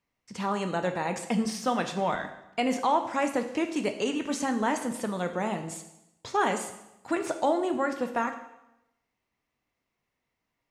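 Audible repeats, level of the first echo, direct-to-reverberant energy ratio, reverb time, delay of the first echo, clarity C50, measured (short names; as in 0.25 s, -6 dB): none, none, 6.0 dB, 0.90 s, none, 9.5 dB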